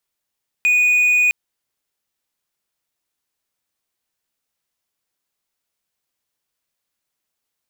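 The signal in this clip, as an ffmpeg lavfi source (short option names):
-f lavfi -i "aevalsrc='0.316*(1-4*abs(mod(2470*t+0.25,1)-0.5))':d=0.66:s=44100"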